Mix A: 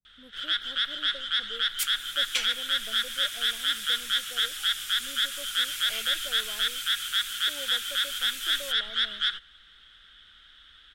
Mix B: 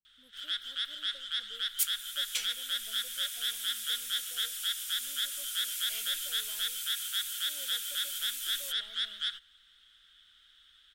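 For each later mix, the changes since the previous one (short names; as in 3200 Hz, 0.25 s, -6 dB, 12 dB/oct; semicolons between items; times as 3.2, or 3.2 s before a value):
master: add pre-emphasis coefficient 0.8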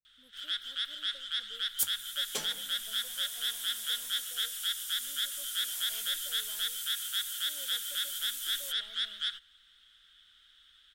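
second sound: remove resonant high-pass 2400 Hz, resonance Q 2.4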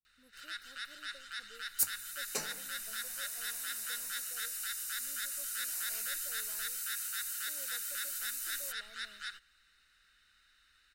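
master: add Butterworth band-stop 3300 Hz, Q 3.2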